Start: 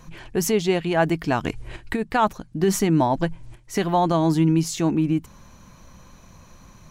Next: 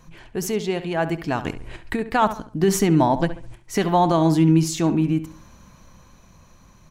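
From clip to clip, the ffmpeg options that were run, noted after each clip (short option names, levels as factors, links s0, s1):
-filter_complex "[0:a]dynaudnorm=f=260:g=13:m=3.76,asplit=2[s0][s1];[s1]adelay=69,lowpass=f=3200:p=1,volume=0.251,asplit=2[s2][s3];[s3]adelay=69,lowpass=f=3200:p=1,volume=0.36,asplit=2[s4][s5];[s5]adelay=69,lowpass=f=3200:p=1,volume=0.36,asplit=2[s6][s7];[s7]adelay=69,lowpass=f=3200:p=1,volume=0.36[s8];[s2][s4][s6][s8]amix=inputs=4:normalize=0[s9];[s0][s9]amix=inputs=2:normalize=0,volume=0.631"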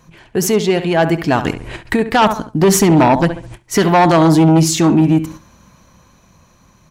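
-af "agate=range=0.398:threshold=0.0112:ratio=16:detection=peak,aeval=exprs='0.596*(cos(1*acos(clip(val(0)/0.596,-1,1)))-cos(1*PI/2))+0.237*(cos(5*acos(clip(val(0)/0.596,-1,1)))-cos(5*PI/2))':c=same,highpass=f=68:p=1,volume=1.19"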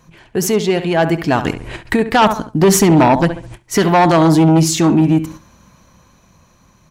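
-af "dynaudnorm=f=650:g=5:m=3.76,volume=0.891"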